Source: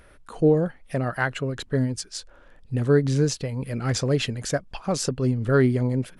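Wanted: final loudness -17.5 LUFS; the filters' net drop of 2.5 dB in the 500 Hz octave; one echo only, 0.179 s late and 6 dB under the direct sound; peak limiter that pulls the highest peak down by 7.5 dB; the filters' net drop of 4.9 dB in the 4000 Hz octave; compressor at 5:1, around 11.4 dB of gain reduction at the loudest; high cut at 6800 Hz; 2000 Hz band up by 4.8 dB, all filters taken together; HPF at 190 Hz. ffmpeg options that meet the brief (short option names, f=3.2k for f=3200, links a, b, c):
-af "highpass=190,lowpass=6.8k,equalizer=f=500:t=o:g=-3,equalizer=f=2k:t=o:g=8.5,equalizer=f=4k:t=o:g=-8.5,acompressor=threshold=-28dB:ratio=5,alimiter=limit=-22.5dB:level=0:latency=1,aecho=1:1:179:0.501,volume=17dB"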